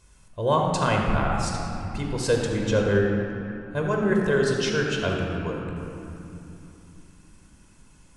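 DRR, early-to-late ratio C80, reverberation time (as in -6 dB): -0.5 dB, 2.0 dB, 3.0 s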